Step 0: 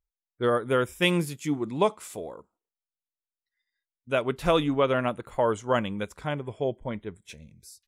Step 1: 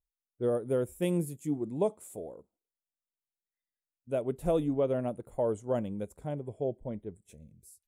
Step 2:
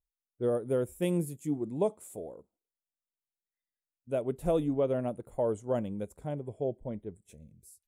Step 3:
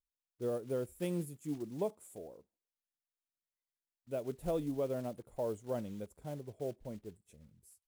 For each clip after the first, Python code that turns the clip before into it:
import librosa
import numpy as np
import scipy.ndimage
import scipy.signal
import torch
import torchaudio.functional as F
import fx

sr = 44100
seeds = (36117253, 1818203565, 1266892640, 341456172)

y1 = fx.band_shelf(x, sr, hz=2400.0, db=-16.0, octaves=2.9)
y1 = y1 * 10.0 ** (-4.0 / 20.0)
y2 = y1
y3 = fx.block_float(y2, sr, bits=5)
y3 = y3 * 10.0 ** (-7.0 / 20.0)